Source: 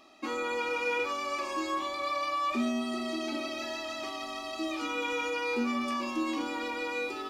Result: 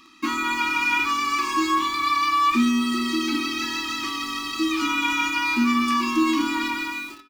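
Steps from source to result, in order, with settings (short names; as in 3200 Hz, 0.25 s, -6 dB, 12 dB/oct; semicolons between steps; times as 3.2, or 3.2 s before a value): ending faded out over 0.63 s; elliptic band-stop 340–970 Hz, stop band 40 dB; speakerphone echo 0.2 s, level -23 dB; in parallel at -6 dB: requantised 8-bit, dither none; on the sum: gain +8 dB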